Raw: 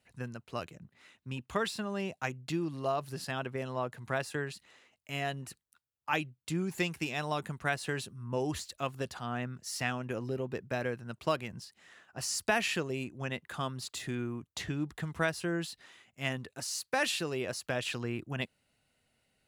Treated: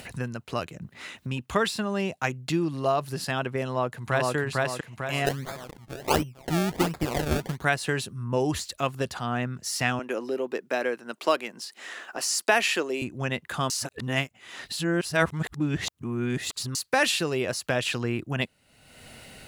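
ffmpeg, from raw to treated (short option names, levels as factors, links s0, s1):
-filter_complex "[0:a]asplit=2[s0][s1];[s1]afade=t=in:st=3.66:d=0.01,afade=t=out:st=4.35:d=0.01,aecho=0:1:450|900|1350|1800|2250|2700:0.891251|0.401063|0.180478|0.0812152|0.0365469|0.0164461[s2];[s0][s2]amix=inputs=2:normalize=0,asplit=3[s3][s4][s5];[s3]afade=t=out:st=5.25:d=0.02[s6];[s4]acrusher=samples=30:mix=1:aa=0.000001:lfo=1:lforange=30:lforate=1.4,afade=t=in:st=5.25:d=0.02,afade=t=out:st=7.63:d=0.02[s7];[s5]afade=t=in:st=7.63:d=0.02[s8];[s6][s7][s8]amix=inputs=3:normalize=0,asettb=1/sr,asplit=3[s9][s10][s11];[s9]atrim=end=9.994[s12];[s10]atrim=start=9.99:end=13.02,asetpts=PTS-STARTPTS,afade=t=in:d=0.004:c=qsin,afade=t=out:st=3.026:d=0.004:c=qsin,highpass=f=270:w=0.5412,highpass=f=270:w=1.3066[s13];[s11]atrim=start=13.016[s14];[s12][s13]acrossfade=d=0.004:c1=hsin:c2=qsin[s15];[s15][s14]acrossfade=d=0.004:c1=qsin:c2=hsin,asplit=3[s16][s17][s18];[s16]atrim=end=13.702[s19];[s17]atrim=start=13.698:end=16.752,asetpts=PTS-STARTPTS,areverse[s20];[s18]atrim=start=16.748[s21];[s19][s20]acrossfade=d=0.004:c1=hsin:c2=hsin[s22];[s22][s21]acrossfade=d=0.004:c1=hsin:c2=hsin,acompressor=mode=upward:threshold=0.0158:ratio=2.5,volume=2.37"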